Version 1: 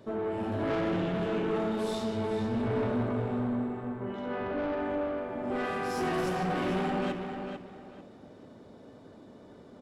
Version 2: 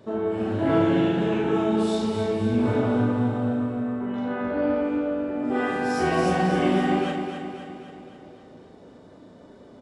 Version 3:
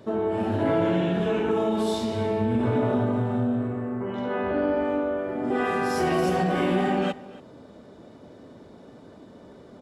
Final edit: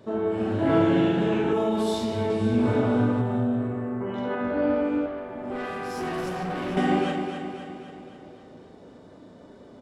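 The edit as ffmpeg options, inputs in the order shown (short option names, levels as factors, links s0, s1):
-filter_complex "[2:a]asplit=2[s0][s1];[1:a]asplit=4[s2][s3][s4][s5];[s2]atrim=end=1.532[s6];[s0]atrim=start=1.528:end=2.302[s7];[s3]atrim=start=2.298:end=3.212[s8];[s1]atrim=start=3.208:end=4.352[s9];[s4]atrim=start=4.348:end=5.062[s10];[0:a]atrim=start=5.058:end=6.772[s11];[s5]atrim=start=6.768[s12];[s6][s7]acrossfade=d=0.004:c1=hsin:c2=hsin[s13];[s13][s8]acrossfade=d=0.004:c1=hsin:c2=hsin[s14];[s14][s9]acrossfade=d=0.004:c1=hsin:c2=hsin[s15];[s15][s10]acrossfade=d=0.004:c1=hsin:c2=hsin[s16];[s16][s11]acrossfade=d=0.004:c1=hsin:c2=hsin[s17];[s17][s12]acrossfade=d=0.004:c1=hsin:c2=hsin"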